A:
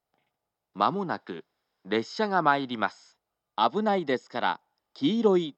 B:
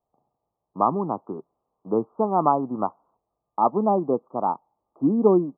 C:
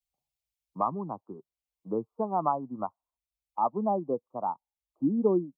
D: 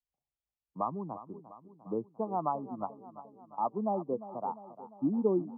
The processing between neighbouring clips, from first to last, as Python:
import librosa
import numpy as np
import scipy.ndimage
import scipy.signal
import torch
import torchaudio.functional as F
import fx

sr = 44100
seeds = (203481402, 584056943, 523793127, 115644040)

y1 = scipy.signal.sosfilt(scipy.signal.butter(16, 1200.0, 'lowpass', fs=sr, output='sos'), x)
y1 = y1 * librosa.db_to_amplitude(4.5)
y2 = fx.bin_expand(y1, sr, power=1.5)
y2 = fx.band_squash(y2, sr, depth_pct=40)
y2 = y2 * librosa.db_to_amplitude(-4.5)
y3 = fx.lowpass(y2, sr, hz=1200.0, slope=6)
y3 = fx.echo_feedback(y3, sr, ms=350, feedback_pct=58, wet_db=-14.5)
y3 = y3 * librosa.db_to_amplitude(-3.0)